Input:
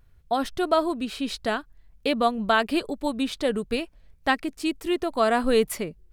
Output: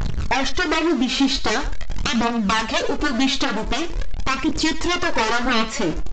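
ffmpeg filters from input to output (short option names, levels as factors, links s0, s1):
-filter_complex "[0:a]aeval=exprs='val(0)+0.5*0.0178*sgn(val(0))':c=same,aeval=exprs='0.447*(cos(1*acos(clip(val(0)/0.447,-1,1)))-cos(1*PI/2))+0.0398*(cos(4*acos(clip(val(0)/0.447,-1,1)))-cos(4*PI/2))+0.0158*(cos(6*acos(clip(val(0)/0.447,-1,1)))-cos(6*PI/2))+0.141*(cos(7*acos(clip(val(0)/0.447,-1,1)))-cos(7*PI/2))':c=same,aphaser=in_gain=1:out_gain=1:delay=3.9:decay=0.54:speed=0.44:type=triangular,aresample=16000,aresample=44100,acompressor=threshold=0.0282:ratio=2.5,asplit=2[s0][s1];[s1]adelay=26,volume=0.316[s2];[s0][s2]amix=inputs=2:normalize=0,asplit=2[s3][s4];[s4]adelay=93.29,volume=0.178,highshelf=f=4000:g=-2.1[s5];[s3][s5]amix=inputs=2:normalize=0,alimiter=level_in=7.94:limit=0.891:release=50:level=0:latency=1,volume=0.501"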